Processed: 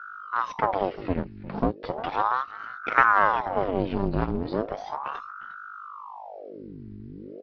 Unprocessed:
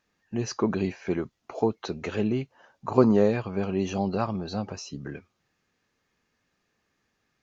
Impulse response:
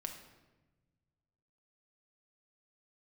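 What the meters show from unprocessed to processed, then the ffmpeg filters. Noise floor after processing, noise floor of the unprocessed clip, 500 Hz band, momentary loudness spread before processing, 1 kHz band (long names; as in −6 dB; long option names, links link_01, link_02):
−42 dBFS, −77 dBFS, −2.5 dB, 16 LU, +11.0 dB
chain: -filter_complex "[0:a]aeval=exprs='if(lt(val(0),0),0.251*val(0),val(0))':channel_layout=same,aresample=11025,aresample=44100,lowshelf=frequency=450:gain=7,aeval=exprs='val(0)+0.00708*(sin(2*PI*50*n/s)+sin(2*PI*2*50*n/s)/2+sin(2*PI*3*50*n/s)/3+sin(2*PI*4*50*n/s)/4+sin(2*PI*5*50*n/s)/5)':channel_layout=same,asplit=2[link_01][link_02];[link_02]acompressor=threshold=-32dB:ratio=6,volume=1.5dB[link_03];[link_01][link_03]amix=inputs=2:normalize=0,equalizer=frequency=330:width_type=o:width=0.77:gain=-6,acrossover=split=3800[link_04][link_05];[link_05]acompressor=threshold=-56dB:ratio=4:attack=1:release=60[link_06];[link_04][link_06]amix=inputs=2:normalize=0,aecho=1:1:354:0.141,aeval=exprs='val(0)*sin(2*PI*780*n/s+780*0.8/0.36*sin(2*PI*0.36*n/s))':channel_layout=same"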